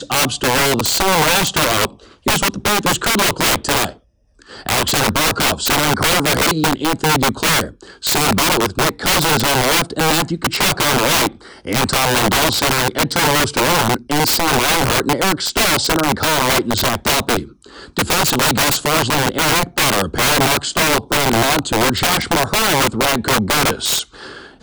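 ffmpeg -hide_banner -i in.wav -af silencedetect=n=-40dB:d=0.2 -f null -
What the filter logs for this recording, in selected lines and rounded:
silence_start: 3.97
silence_end: 4.39 | silence_duration: 0.42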